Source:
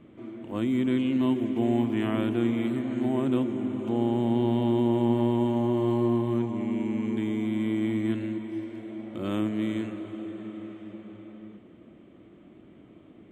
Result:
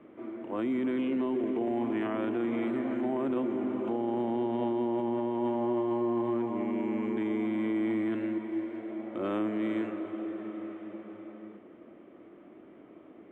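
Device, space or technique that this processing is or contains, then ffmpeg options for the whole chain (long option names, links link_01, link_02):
DJ mixer with the lows and highs turned down: -filter_complex "[0:a]asettb=1/sr,asplit=3[link_01][link_02][link_03];[link_01]atrim=end=1.084[link_04];[link_02]atrim=start=1.08:end=1.68,asetpts=PTS-STARTPTS,afade=type=in:duration=0.004:curve=qsin,afade=type=out:start_time=0.596:duration=0.004:curve=qsin,equalizer=frequency=420:width=4.3:gain=7.5[link_05];[link_03]atrim=start=1.676[link_06];[link_04][link_05]acrossfade=duration=0.004:curve1=hsin:curve2=qsin[link_07];[link_07][link_06]acrossfade=duration=0.004:curve1=qsin:curve2=hsin,acrossover=split=280 2300:gain=0.141 1 0.126[link_08][link_09][link_10];[link_08][link_09][link_10]amix=inputs=3:normalize=0,alimiter=level_in=3.5dB:limit=-24dB:level=0:latency=1:release=19,volume=-3.5dB,volume=4dB"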